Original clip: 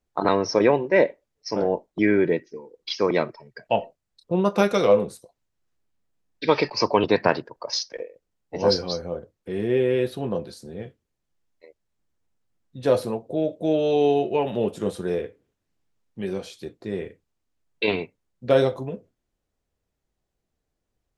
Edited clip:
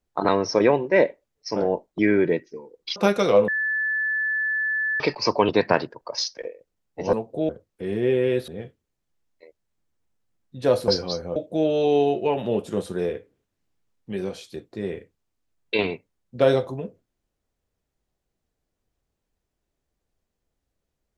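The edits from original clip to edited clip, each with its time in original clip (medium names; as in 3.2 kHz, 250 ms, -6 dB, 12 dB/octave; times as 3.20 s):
2.96–4.51 s: delete
5.03–6.55 s: bleep 1.74 kHz -21.5 dBFS
8.68–9.16 s: swap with 13.09–13.45 s
10.15–10.69 s: delete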